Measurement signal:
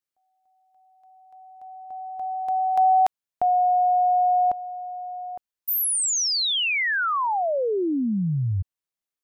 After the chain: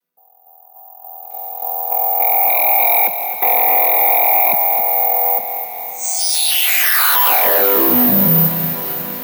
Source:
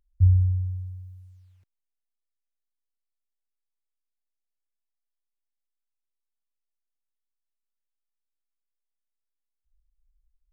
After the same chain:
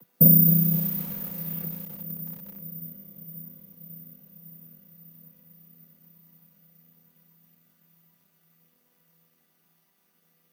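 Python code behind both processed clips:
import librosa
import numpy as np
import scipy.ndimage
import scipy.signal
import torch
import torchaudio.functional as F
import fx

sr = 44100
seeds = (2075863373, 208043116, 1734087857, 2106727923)

p1 = fx.chord_vocoder(x, sr, chord='minor triad', root=52)
p2 = scipy.signal.sosfilt(scipy.signal.butter(2, 150.0, 'highpass', fs=sr, output='sos'), p1)
p3 = fx.over_compress(p2, sr, threshold_db=-27.0, ratio=-0.5)
p4 = p2 + (p3 * librosa.db_to_amplitude(2.5))
p5 = fx.fold_sine(p4, sr, drive_db=11, ceiling_db=-6.5)
p6 = fx.echo_diffused(p5, sr, ms=519, feedback_pct=74, wet_db=-14)
p7 = (np.kron(scipy.signal.resample_poly(p6, 1, 3), np.eye(3)[0]) * 3)[:len(p6)]
p8 = fx.echo_crushed(p7, sr, ms=261, feedback_pct=55, bits=4, wet_db=-9.5)
y = p8 * librosa.db_to_amplitude(-8.5)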